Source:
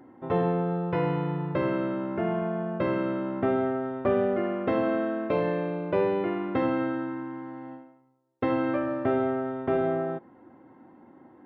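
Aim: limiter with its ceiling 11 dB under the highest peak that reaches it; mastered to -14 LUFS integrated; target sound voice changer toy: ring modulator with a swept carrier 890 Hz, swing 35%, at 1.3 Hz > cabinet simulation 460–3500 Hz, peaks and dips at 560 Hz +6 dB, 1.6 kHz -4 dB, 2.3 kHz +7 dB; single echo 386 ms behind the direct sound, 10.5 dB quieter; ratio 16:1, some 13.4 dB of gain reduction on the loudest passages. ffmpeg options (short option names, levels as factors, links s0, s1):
-af "acompressor=threshold=0.02:ratio=16,alimiter=level_in=2.82:limit=0.0631:level=0:latency=1,volume=0.355,aecho=1:1:386:0.299,aeval=exprs='val(0)*sin(2*PI*890*n/s+890*0.35/1.3*sin(2*PI*1.3*n/s))':c=same,highpass=460,equalizer=f=560:t=q:w=4:g=6,equalizer=f=1600:t=q:w=4:g=-4,equalizer=f=2300:t=q:w=4:g=7,lowpass=f=3500:w=0.5412,lowpass=f=3500:w=1.3066,volume=29.9"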